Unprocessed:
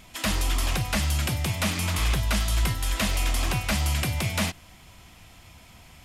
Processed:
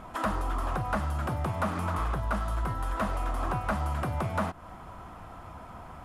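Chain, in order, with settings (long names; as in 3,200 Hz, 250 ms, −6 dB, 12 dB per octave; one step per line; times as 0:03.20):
parametric band 10,000 Hz +5.5 dB 0.31 octaves
downward compressor 4 to 1, threshold −33 dBFS, peak gain reduction 11 dB
drawn EQ curve 120 Hz 0 dB, 1,300 Hz +10 dB, 2,200 Hz −10 dB, 5,100 Hz −16 dB
level +3.5 dB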